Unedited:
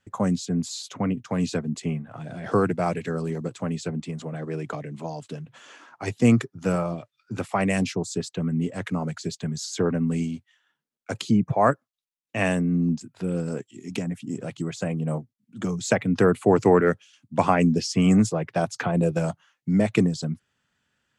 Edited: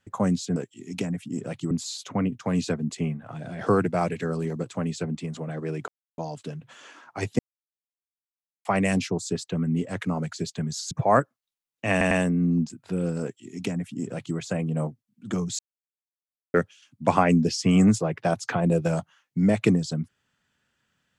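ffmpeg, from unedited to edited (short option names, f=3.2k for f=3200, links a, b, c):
-filter_complex "[0:a]asplit=12[a][b][c][d][e][f][g][h][i][j][k][l];[a]atrim=end=0.562[m];[b]atrim=start=13.528:end=14.682[n];[c]atrim=start=0.558:end=4.73,asetpts=PTS-STARTPTS,afade=t=out:st=4.168:d=0.004:c=hsin[o];[d]atrim=start=4.73:end=5.03,asetpts=PTS-STARTPTS,volume=0[p];[e]atrim=start=5.03:end=6.24,asetpts=PTS-STARTPTS,afade=t=in:d=0.004:c=hsin,afade=t=out:st=1.206:d=0.004:c=hsin[q];[f]atrim=start=6.24:end=7.5,asetpts=PTS-STARTPTS,volume=0[r];[g]atrim=start=7.5:end=9.762,asetpts=PTS-STARTPTS,afade=t=in:d=0.004:c=hsin[s];[h]atrim=start=11.418:end=12.522[t];[i]atrim=start=12.418:end=12.522[u];[j]atrim=start=12.418:end=15.9,asetpts=PTS-STARTPTS,afade=t=out:st=3.478:d=0.004:c=hsin[v];[k]atrim=start=15.9:end=16.85,asetpts=PTS-STARTPTS,volume=0[w];[l]atrim=start=16.85,asetpts=PTS-STARTPTS,afade=t=in:d=0.004:c=hsin[x];[m][n]acrossfade=d=0.004:c1=hsin:c2=hsin[y];[o][p][q][r][s]concat=n=5:v=0:a=1[z];[y][z]acrossfade=d=0.004:c1=hsin:c2=hsin[aa];[aa][t]acrossfade=d=0.004:c1=hsin:c2=hsin[ab];[ab][u]acrossfade=d=0.004:c1=hsin:c2=hsin[ac];[v][w][x]concat=n=3:v=0:a=1[ad];[ac][ad]acrossfade=d=0.004:c1=hsin:c2=hsin"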